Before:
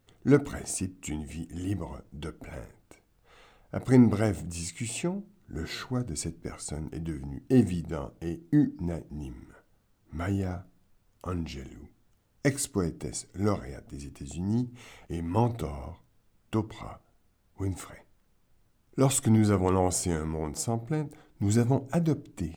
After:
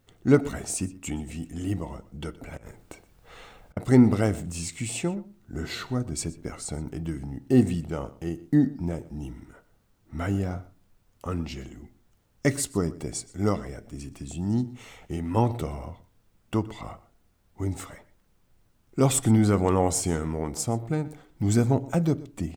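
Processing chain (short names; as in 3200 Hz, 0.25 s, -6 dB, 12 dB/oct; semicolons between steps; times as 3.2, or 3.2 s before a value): 2.57–3.77 negative-ratio compressor -48 dBFS, ratio -0.5; outdoor echo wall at 21 m, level -19 dB; gain +2.5 dB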